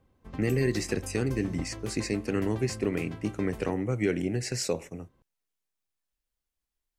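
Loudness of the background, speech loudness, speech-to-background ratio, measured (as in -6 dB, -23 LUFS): -43.0 LUFS, -30.5 LUFS, 12.5 dB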